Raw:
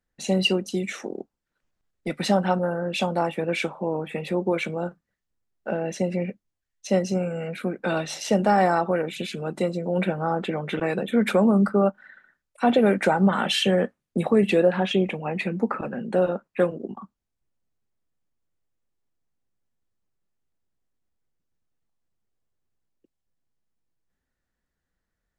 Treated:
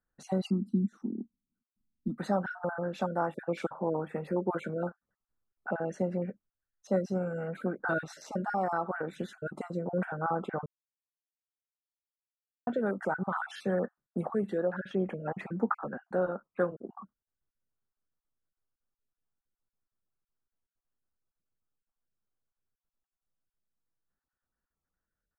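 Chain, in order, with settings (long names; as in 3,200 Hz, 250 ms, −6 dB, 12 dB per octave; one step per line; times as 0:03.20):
time-frequency cells dropped at random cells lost 22%
high shelf with overshoot 1,900 Hz −9 dB, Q 3
speech leveller within 4 dB 0.5 s
0:00.50–0:02.18: drawn EQ curve 150 Hz 0 dB, 230 Hz +13 dB, 560 Hz −26 dB, 1,100 Hz −16 dB, 1,800 Hz −27 dB, 3,700 Hz −16 dB
0:10.66–0:12.67: silence
level −8.5 dB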